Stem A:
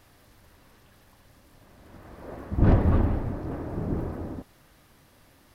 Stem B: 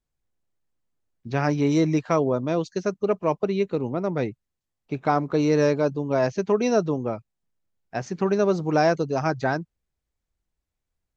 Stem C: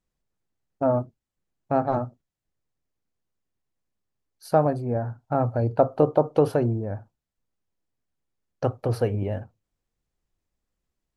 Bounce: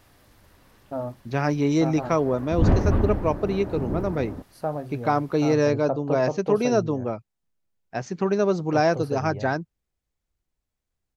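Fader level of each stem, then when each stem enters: +0.5 dB, -0.5 dB, -8.5 dB; 0.00 s, 0.00 s, 0.10 s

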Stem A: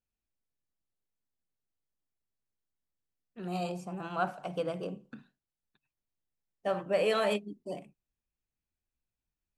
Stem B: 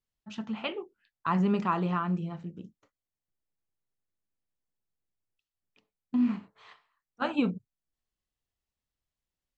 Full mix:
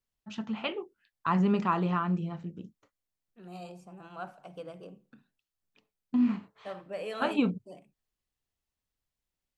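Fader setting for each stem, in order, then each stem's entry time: -9.5 dB, +0.5 dB; 0.00 s, 0.00 s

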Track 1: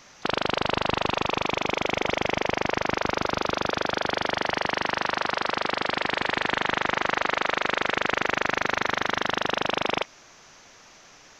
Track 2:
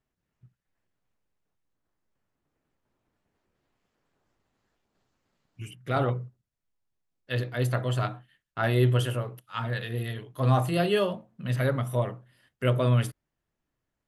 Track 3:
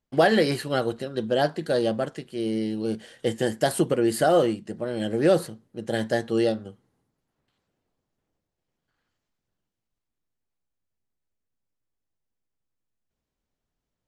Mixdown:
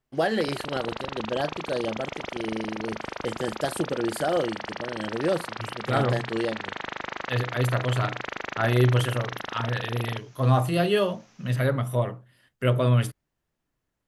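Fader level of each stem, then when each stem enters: -9.0 dB, +2.0 dB, -5.5 dB; 0.15 s, 0.00 s, 0.00 s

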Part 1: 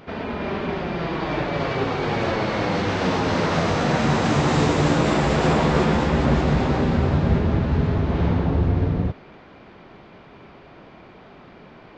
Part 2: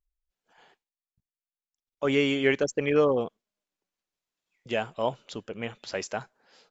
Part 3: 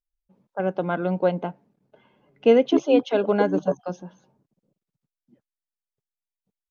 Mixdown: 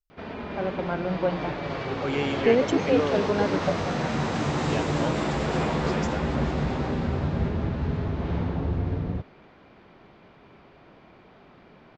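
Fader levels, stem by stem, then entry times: -7.0 dB, -5.0 dB, -4.5 dB; 0.10 s, 0.00 s, 0.00 s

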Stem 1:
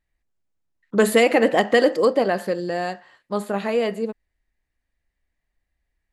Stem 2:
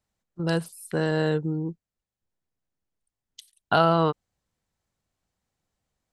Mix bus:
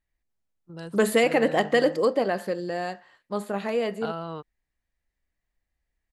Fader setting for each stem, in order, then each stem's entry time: -4.5 dB, -14.0 dB; 0.00 s, 0.30 s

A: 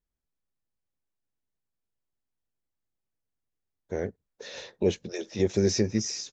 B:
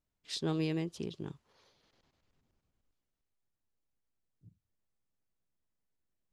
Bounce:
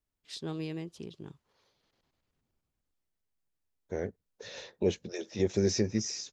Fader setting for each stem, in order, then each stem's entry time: -3.5 dB, -4.0 dB; 0.00 s, 0.00 s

